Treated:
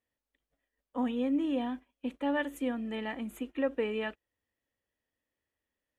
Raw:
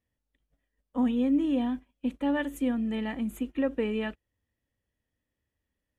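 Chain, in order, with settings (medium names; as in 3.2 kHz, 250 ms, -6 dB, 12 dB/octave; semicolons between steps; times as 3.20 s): tone controls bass -12 dB, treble -4 dB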